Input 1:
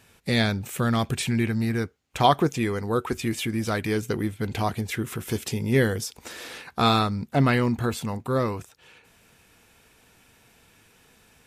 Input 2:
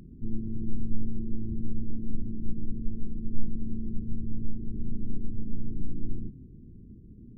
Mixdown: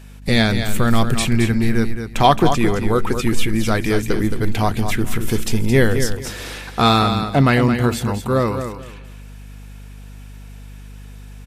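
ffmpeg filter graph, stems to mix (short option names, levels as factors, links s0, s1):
-filter_complex "[0:a]aeval=exprs='val(0)+0.00562*(sin(2*PI*50*n/s)+sin(2*PI*2*50*n/s)/2+sin(2*PI*3*50*n/s)/3+sin(2*PI*4*50*n/s)/4+sin(2*PI*5*50*n/s)/5)':c=same,volume=1.19,asplit=3[s0][s1][s2];[s1]volume=0.376[s3];[1:a]volume=0.944[s4];[s2]apad=whole_len=325018[s5];[s4][s5]sidechaingate=range=0.0224:threshold=0.0158:ratio=16:detection=peak[s6];[s3]aecho=0:1:219|438|657|876:1|0.22|0.0484|0.0106[s7];[s0][s6][s7]amix=inputs=3:normalize=0,acontrast=28"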